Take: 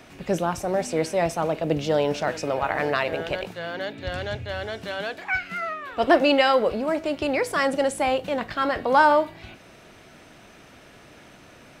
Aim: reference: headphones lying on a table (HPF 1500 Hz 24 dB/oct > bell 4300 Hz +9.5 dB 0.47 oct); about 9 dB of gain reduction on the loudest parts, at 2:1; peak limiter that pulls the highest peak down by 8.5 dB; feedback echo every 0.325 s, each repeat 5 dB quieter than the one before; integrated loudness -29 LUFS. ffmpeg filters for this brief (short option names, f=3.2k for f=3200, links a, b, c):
-af "acompressor=threshold=-29dB:ratio=2,alimiter=limit=-22.5dB:level=0:latency=1,highpass=f=1.5k:w=0.5412,highpass=f=1.5k:w=1.3066,equalizer=f=4.3k:t=o:w=0.47:g=9.5,aecho=1:1:325|650|975|1300|1625|1950|2275:0.562|0.315|0.176|0.0988|0.0553|0.031|0.0173,volume=7dB"